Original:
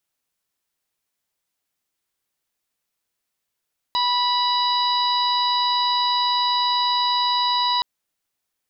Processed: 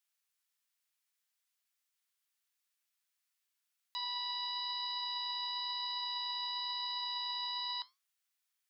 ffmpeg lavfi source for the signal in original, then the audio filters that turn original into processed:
-f lavfi -i "aevalsrc='0.1*sin(2*PI*981*t)+0.0178*sin(2*PI*1962*t)+0.0251*sin(2*PI*2943*t)+0.075*sin(2*PI*3924*t)+0.0398*sin(2*PI*4905*t)':d=3.87:s=44100"
-af "highpass=1300,alimiter=level_in=1.19:limit=0.0631:level=0:latency=1:release=99,volume=0.841,flanger=delay=6.9:depth=3.8:regen=81:speed=1:shape=triangular"

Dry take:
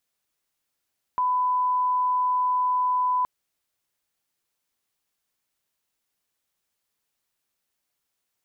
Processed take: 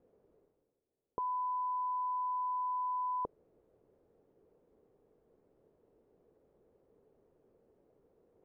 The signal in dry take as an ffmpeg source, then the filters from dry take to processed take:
-f lavfi -i "sine=f=1000:d=2.07:r=44100,volume=-1.94dB"
-af "areverse,acompressor=mode=upward:threshold=0.00708:ratio=2.5,areverse,lowpass=f=450:t=q:w=3.7"

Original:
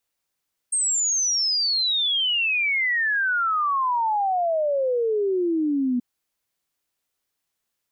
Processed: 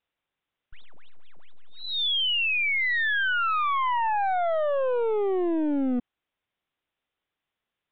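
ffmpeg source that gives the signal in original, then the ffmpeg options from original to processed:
-f lavfi -i "aevalsrc='0.106*clip(min(t,5.28-t)/0.01,0,1)*sin(2*PI*8600*5.28/log(240/8600)*(exp(log(240/8600)*t/5.28)-1))':d=5.28:s=44100"
-af "aeval=exprs='clip(val(0),-1,0.0422)':c=same,aresample=8000,aresample=44100"

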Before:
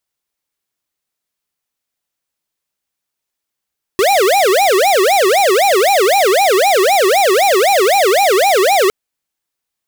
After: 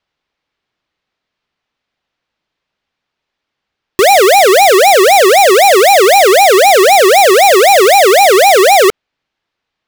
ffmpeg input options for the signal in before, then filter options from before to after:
-f lavfi -i "aevalsrc='0.282*(2*lt(mod((590*t-222/(2*PI*3.9)*sin(2*PI*3.9*t)),1),0.5)-1)':d=4.91:s=44100"
-filter_complex "[0:a]acrossover=split=830|4500[s0][s1][s2];[s2]aeval=exprs='val(0)*gte(abs(val(0)),0.0282)':c=same[s3];[s0][s1][s3]amix=inputs=3:normalize=0,alimiter=level_in=3.55:limit=0.891:release=50:level=0:latency=1"

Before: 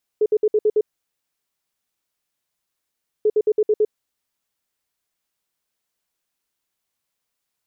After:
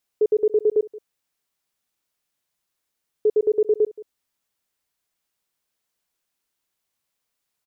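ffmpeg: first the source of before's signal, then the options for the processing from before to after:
-f lavfi -i "aevalsrc='0.224*sin(2*PI*426*t)*clip(min(mod(mod(t,3.04),0.11),0.05-mod(mod(t,3.04),0.11))/0.005,0,1)*lt(mod(t,3.04),0.66)':d=6.08:s=44100"
-filter_complex "[0:a]asplit=2[s0][s1];[s1]adelay=174.9,volume=0.112,highshelf=f=4000:g=-3.94[s2];[s0][s2]amix=inputs=2:normalize=0"

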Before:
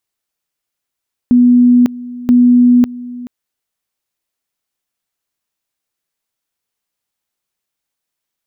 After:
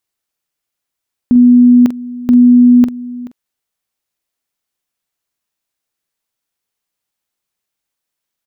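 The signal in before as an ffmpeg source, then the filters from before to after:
-f lavfi -i "aevalsrc='pow(10,(-4.5-19*gte(mod(t,0.98),0.55))/20)*sin(2*PI*245*t)':d=1.96:s=44100"
-filter_complex "[0:a]asplit=2[s0][s1];[s1]adelay=45,volume=0.251[s2];[s0][s2]amix=inputs=2:normalize=0"

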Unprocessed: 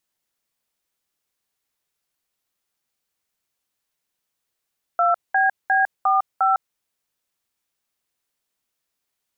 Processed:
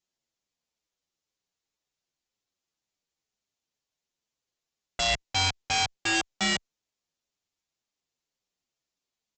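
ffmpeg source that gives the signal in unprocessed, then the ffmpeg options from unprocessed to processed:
-f lavfi -i "aevalsrc='0.133*clip(min(mod(t,0.354),0.154-mod(t,0.354))/0.002,0,1)*(eq(floor(t/0.354),0)*(sin(2*PI*697*mod(t,0.354))+sin(2*PI*1336*mod(t,0.354)))+eq(floor(t/0.354),1)*(sin(2*PI*770*mod(t,0.354))+sin(2*PI*1633*mod(t,0.354)))+eq(floor(t/0.354),2)*(sin(2*PI*770*mod(t,0.354))+sin(2*PI*1633*mod(t,0.354)))+eq(floor(t/0.354),3)*(sin(2*PI*770*mod(t,0.354))+sin(2*PI*1209*mod(t,0.354)))+eq(floor(t/0.354),4)*(sin(2*PI*770*mod(t,0.354))+sin(2*PI*1336*mod(t,0.354))))':d=1.77:s=44100"
-filter_complex "[0:a]equalizer=f=1500:t=o:w=1.7:g=-6,aresample=16000,aeval=exprs='(mod(7.08*val(0)+1,2)-1)/7.08':c=same,aresample=44100,asplit=2[s0][s1];[s1]adelay=7.9,afreqshift=-2[s2];[s0][s2]amix=inputs=2:normalize=1"

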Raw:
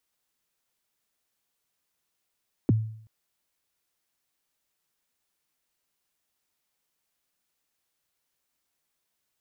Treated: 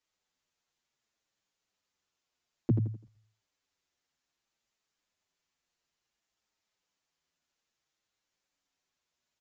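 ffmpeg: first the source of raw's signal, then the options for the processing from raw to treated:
-f lavfi -i "aevalsrc='0.178*pow(10,-3*t/0.61)*sin(2*PI*(380*0.021/log(110/380)*(exp(log(110/380)*min(t,0.021)/0.021)-1)+110*max(t-0.021,0)))':d=0.38:s=44100"
-filter_complex "[0:a]asplit=2[s0][s1];[s1]aecho=0:1:84|168|252|336:0.473|0.161|0.0547|0.0186[s2];[s0][s2]amix=inputs=2:normalize=0,aresample=16000,aresample=44100,asplit=2[s3][s4];[s4]adelay=7.4,afreqshift=-0.59[s5];[s3][s5]amix=inputs=2:normalize=1"

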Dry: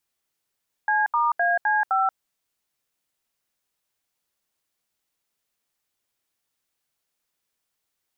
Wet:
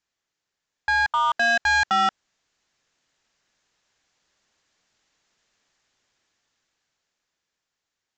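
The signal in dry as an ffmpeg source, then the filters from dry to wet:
-f lavfi -i "aevalsrc='0.0891*clip(min(mod(t,0.257),0.182-mod(t,0.257))/0.002,0,1)*(eq(floor(t/0.257),0)*(sin(2*PI*852*mod(t,0.257))+sin(2*PI*1633*mod(t,0.257)))+eq(floor(t/0.257),1)*(sin(2*PI*941*mod(t,0.257))+sin(2*PI*1209*mod(t,0.257)))+eq(floor(t/0.257),2)*(sin(2*PI*697*mod(t,0.257))+sin(2*PI*1633*mod(t,0.257)))+eq(floor(t/0.257),3)*(sin(2*PI*852*mod(t,0.257))+sin(2*PI*1633*mod(t,0.257)))+eq(floor(t/0.257),4)*(sin(2*PI*770*mod(t,0.257))+sin(2*PI*1336*mod(t,0.257))))':d=1.285:s=44100"
-af "equalizer=f=1700:t=o:w=0.33:g=4,dynaudnorm=f=230:g=17:m=3.98,aresample=16000,volume=7.5,asoftclip=hard,volume=0.133,aresample=44100"

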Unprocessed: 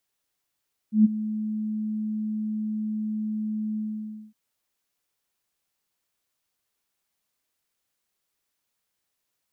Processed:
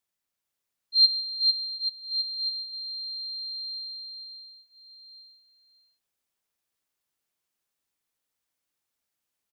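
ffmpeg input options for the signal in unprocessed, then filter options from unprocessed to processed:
-f lavfi -i "aevalsrc='0.282*sin(2*PI*215*t)':d=3.411:s=44100,afade=t=in:d=0.127,afade=t=out:st=0.127:d=0.021:silence=0.178,afade=t=out:st=2.85:d=0.561"
-filter_complex "[0:a]afftfilt=real='real(if(lt(b,736),b+184*(1-2*mod(floor(b/184),2)),b),0)':imag='imag(if(lt(b,736),b+184*(1-2*mod(floor(b/184),2)),b),0)':win_size=2048:overlap=0.75,agate=range=0.501:threshold=0.0355:ratio=16:detection=peak,asplit=2[s0][s1];[s1]aecho=0:1:450|832.5|1158|1434|1669:0.631|0.398|0.251|0.158|0.1[s2];[s0][s2]amix=inputs=2:normalize=0"

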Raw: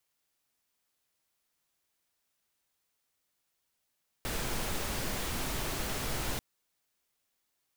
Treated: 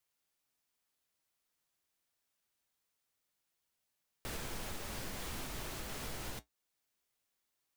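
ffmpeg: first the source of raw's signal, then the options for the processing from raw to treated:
-f lavfi -i "anoisesrc=c=pink:a=0.102:d=2.14:r=44100:seed=1"
-af "alimiter=level_in=1.58:limit=0.0631:level=0:latency=1:release=491,volume=0.631,flanger=delay=8.6:depth=8.2:regen=-63:speed=0.62:shape=sinusoidal"

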